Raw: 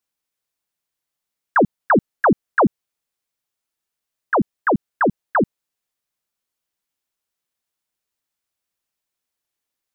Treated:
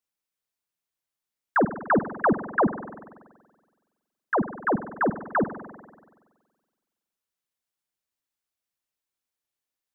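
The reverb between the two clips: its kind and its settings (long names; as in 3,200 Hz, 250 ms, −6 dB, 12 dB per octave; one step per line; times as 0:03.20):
spring reverb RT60 1.5 s, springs 46 ms, chirp 50 ms, DRR 11 dB
level −6 dB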